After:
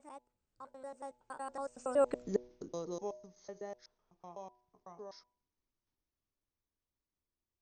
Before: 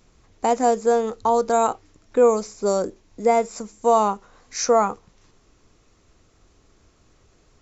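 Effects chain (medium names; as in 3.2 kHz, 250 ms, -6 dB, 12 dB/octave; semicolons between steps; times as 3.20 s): slices played last to first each 109 ms, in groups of 6; Doppler pass-by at 2.23 s, 51 m/s, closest 5.9 m; de-hum 122.6 Hz, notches 8; trim -5.5 dB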